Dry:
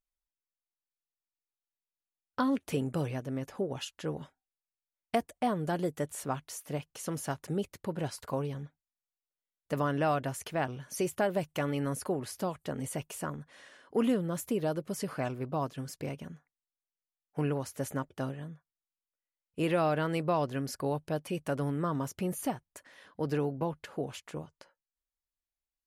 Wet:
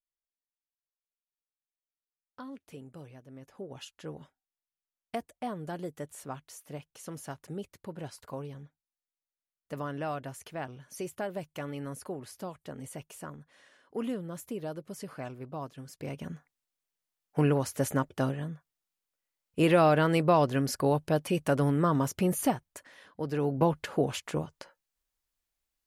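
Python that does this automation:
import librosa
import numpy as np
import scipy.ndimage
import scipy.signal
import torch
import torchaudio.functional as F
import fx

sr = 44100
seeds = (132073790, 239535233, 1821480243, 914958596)

y = fx.gain(x, sr, db=fx.line((3.23, -15.0), (3.83, -6.0), (15.89, -6.0), (16.32, 6.0), (22.48, 6.0), (23.32, -2.0), (23.59, 8.0)))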